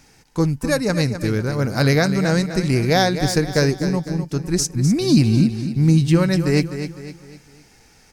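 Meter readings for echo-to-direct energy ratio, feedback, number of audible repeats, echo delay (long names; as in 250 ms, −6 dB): −9.0 dB, 42%, 4, 253 ms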